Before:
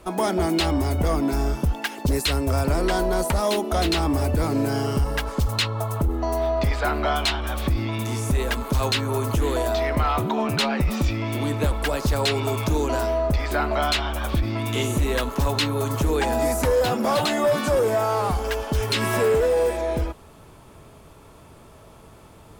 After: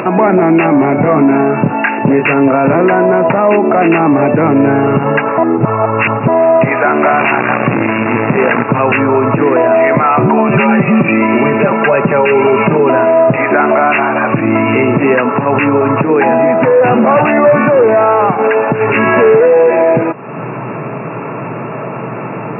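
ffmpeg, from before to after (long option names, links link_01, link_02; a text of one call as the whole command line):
ffmpeg -i in.wav -filter_complex "[0:a]asettb=1/sr,asplit=3[link_01][link_02][link_03];[link_01]atrim=end=0.974[link_04];[link_02]atrim=start=0.97:end=2.75,asetpts=PTS-STARTPTS,afade=type=in:duration=0.004:curve=qsin,afade=type=out:start_time=1.776:duration=0.004:curve=qsin,asplit=2[link_05][link_06];[link_06]adelay=26,volume=-6dB[link_07];[link_05][link_07]amix=inputs=2:normalize=0,atrim=end_sample=78498[link_08];[link_03]atrim=start=2.746[link_09];[link_04][link_08]acrossfade=duration=0.004:curve1=hsin:curve2=qsin[link_10];[link_10][link_09]acrossfade=duration=0.004:curve1=qsin:curve2=hsin,asettb=1/sr,asplit=3[link_11][link_12][link_13];[link_11]atrim=end=7.024[link_14];[link_12]atrim=start=7.02:end=8.69,asetpts=PTS-STARTPTS,afade=type=in:duration=0.004:curve=qsin,afade=type=out:start_time=1.666:duration=0.004:curve=qsin,acrusher=bits=5:dc=4:mix=0:aa=0.000001[link_15];[link_13]atrim=start=8.686[link_16];[link_14][link_15]acrossfade=duration=0.004:curve1=hsin:curve2=qsin[link_17];[link_17][link_16]acrossfade=duration=0.004:curve1=qsin:curve2=hsin,asettb=1/sr,asplit=3[link_18][link_19][link_20];[link_18]atrim=end=10.494[link_21];[link_19]atrim=start=10.49:end=12.9,asetpts=PTS-STARTPTS,afade=type=in:duration=0.004:curve=qsin,afade=type=out:start_time=2.406:duration=0.004:curve=qsin,aecho=1:1:5.1:0.83,atrim=end_sample=106281[link_22];[link_20]atrim=start=12.896[link_23];[link_21][link_22]acrossfade=duration=0.004:curve1=hsin:curve2=qsin[link_24];[link_24][link_23]acrossfade=duration=0.004:curve1=qsin:curve2=hsin,asettb=1/sr,asplit=3[link_25][link_26][link_27];[link_25]atrim=end=15.204[link_28];[link_26]atrim=start=15.2:end=19.06,asetpts=PTS-STARTPTS,afade=type=in:duration=0.004:curve=qsin,afade=type=out:start_time=3.856:duration=0.004:curve=qsin,acompressor=threshold=-22dB:ratio=6:attack=3.2:release=140:knee=1:detection=peak[link_29];[link_27]atrim=start=19.056[link_30];[link_28][link_29]acrossfade=duration=0.004:curve1=hsin:curve2=qsin[link_31];[link_31][link_30]acrossfade=duration=0.004:curve1=qsin:curve2=hsin,asplit=3[link_32][link_33][link_34];[link_32]atrim=end=5.382[link_35];[link_33]atrim=start=5.378:end=6.282,asetpts=PTS-STARTPTS,areverse[link_36];[link_34]atrim=start=6.278[link_37];[link_35][link_36]acrossfade=duration=0.004:curve1=hsin:curve2=hsin[link_38];[link_38][link_37]acrossfade=duration=0.004:curve1=hsin:curve2=hsin,afftfilt=real='re*between(b*sr/4096,110,2800)':imag='im*between(b*sr/4096,110,2800)':win_size=4096:overlap=0.75,acompressor=mode=upward:threshold=-30dB:ratio=2.5,alimiter=level_in=20dB:limit=-1dB:release=50:level=0:latency=1,volume=-1dB" out.wav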